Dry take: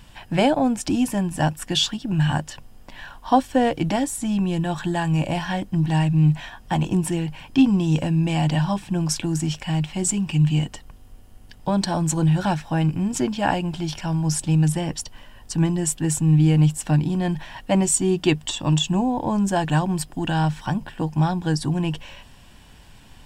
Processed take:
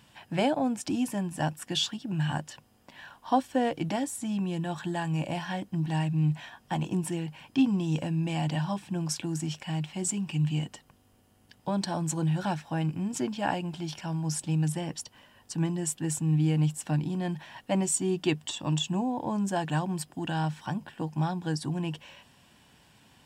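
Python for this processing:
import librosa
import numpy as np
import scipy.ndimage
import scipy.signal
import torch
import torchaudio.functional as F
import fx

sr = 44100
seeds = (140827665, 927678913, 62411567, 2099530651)

y = scipy.signal.sosfilt(scipy.signal.butter(2, 120.0, 'highpass', fs=sr, output='sos'), x)
y = y * 10.0 ** (-7.5 / 20.0)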